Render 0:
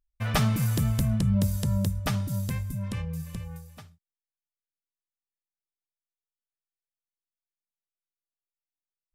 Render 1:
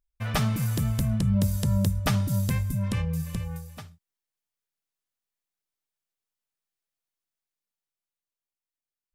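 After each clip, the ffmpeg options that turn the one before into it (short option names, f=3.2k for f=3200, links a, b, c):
-af "dynaudnorm=f=320:g=11:m=6.5dB,volume=-1.5dB"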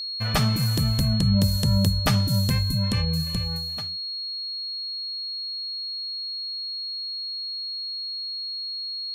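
-af "aeval=exprs='val(0)+0.0251*sin(2*PI*4300*n/s)':c=same,volume=3dB"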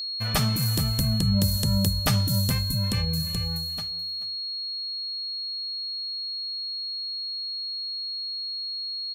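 -filter_complex "[0:a]acrossover=split=1700[a][b];[b]crystalizer=i=1:c=0[c];[a][c]amix=inputs=2:normalize=0,aecho=1:1:431:0.158,volume=-2.5dB"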